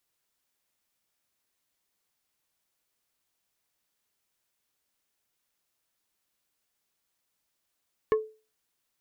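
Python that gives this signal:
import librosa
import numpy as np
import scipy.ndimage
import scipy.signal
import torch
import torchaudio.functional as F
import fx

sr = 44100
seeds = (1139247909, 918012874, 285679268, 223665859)

y = fx.strike_wood(sr, length_s=0.45, level_db=-17.0, body='plate', hz=435.0, decay_s=0.33, tilt_db=7.0, modes=5)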